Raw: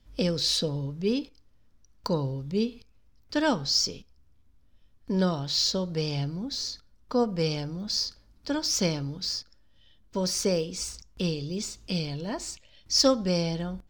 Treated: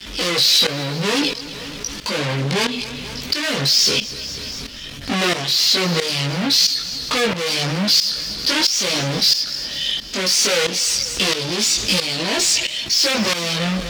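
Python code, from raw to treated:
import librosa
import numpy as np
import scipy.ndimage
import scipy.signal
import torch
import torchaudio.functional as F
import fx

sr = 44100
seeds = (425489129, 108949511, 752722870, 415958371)

y = fx.dynamic_eq(x, sr, hz=500.0, q=1.9, threshold_db=-39.0, ratio=4.0, max_db=5)
y = np.clip(y, -10.0 ** (-25.0 / 20.0), 10.0 ** (-25.0 / 20.0))
y = fx.leveller(y, sr, passes=5)
y = fx.hum_notches(y, sr, base_hz=50, count=3)
y = fx.chorus_voices(y, sr, voices=4, hz=0.24, base_ms=19, depth_ms=4.9, mix_pct=50)
y = fx.weighting(y, sr, curve='D')
y = fx.echo_feedback(y, sr, ms=244, feedback_pct=52, wet_db=-20.0)
y = fx.tremolo_shape(y, sr, shape='saw_up', hz=1.5, depth_pct=85)
y = fx.env_flatten(y, sr, amount_pct=50)
y = F.gain(torch.from_numpy(y), 6.5).numpy()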